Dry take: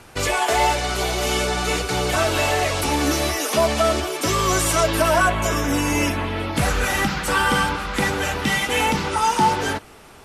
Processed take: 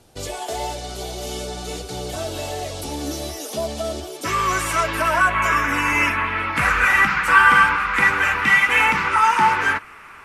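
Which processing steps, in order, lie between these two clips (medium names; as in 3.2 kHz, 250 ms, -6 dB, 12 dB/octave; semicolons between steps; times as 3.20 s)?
high-order bell 1.6 kHz -9 dB, from 4.24 s +9 dB, from 5.33 s +15.5 dB; trim -6.5 dB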